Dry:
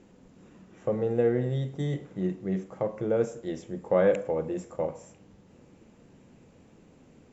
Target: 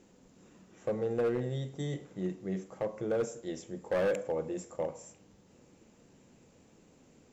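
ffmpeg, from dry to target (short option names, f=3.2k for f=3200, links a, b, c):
-af "bass=f=250:g=-3,treble=f=4k:g=8,asoftclip=type=hard:threshold=-21dB,volume=-4dB"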